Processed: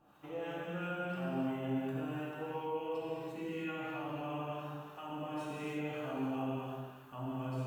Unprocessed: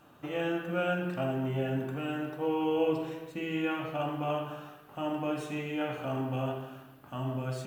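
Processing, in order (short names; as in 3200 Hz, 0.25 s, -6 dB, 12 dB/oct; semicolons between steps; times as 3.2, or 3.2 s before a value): bell 930 Hz +4.5 dB 0.65 oct; limiter -26 dBFS, peak gain reduction 9.5 dB; harmonic tremolo 2.9 Hz, depth 70%, crossover 850 Hz; non-linear reverb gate 0.35 s flat, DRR -5 dB; gain -7.5 dB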